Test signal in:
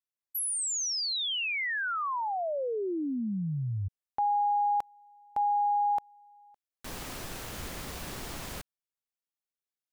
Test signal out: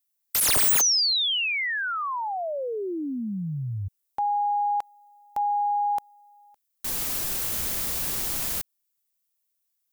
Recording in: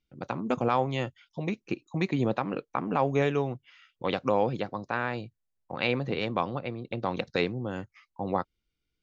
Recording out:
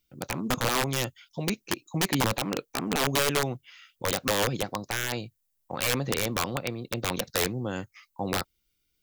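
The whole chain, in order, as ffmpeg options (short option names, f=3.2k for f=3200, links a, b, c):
-af "aemphasis=mode=production:type=75kf,aeval=exprs='(mod(8.41*val(0)+1,2)-1)/8.41':c=same,volume=1.5dB"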